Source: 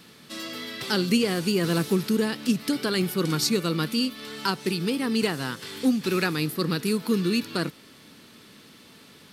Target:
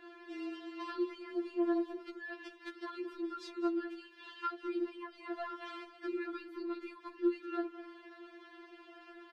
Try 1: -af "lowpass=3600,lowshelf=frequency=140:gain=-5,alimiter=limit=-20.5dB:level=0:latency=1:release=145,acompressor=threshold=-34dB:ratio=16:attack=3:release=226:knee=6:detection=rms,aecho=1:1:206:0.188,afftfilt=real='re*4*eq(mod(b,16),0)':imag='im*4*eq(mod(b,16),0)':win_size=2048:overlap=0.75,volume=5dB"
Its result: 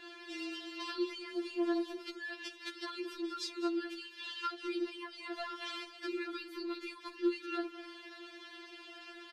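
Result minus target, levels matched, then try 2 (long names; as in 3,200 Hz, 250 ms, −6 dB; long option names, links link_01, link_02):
4,000 Hz band +11.5 dB
-af "lowpass=1500,lowshelf=frequency=140:gain=-5,alimiter=limit=-20.5dB:level=0:latency=1:release=145,acompressor=threshold=-34dB:ratio=16:attack=3:release=226:knee=6:detection=rms,aecho=1:1:206:0.188,afftfilt=real='re*4*eq(mod(b,16),0)':imag='im*4*eq(mod(b,16),0)':win_size=2048:overlap=0.75,volume=5dB"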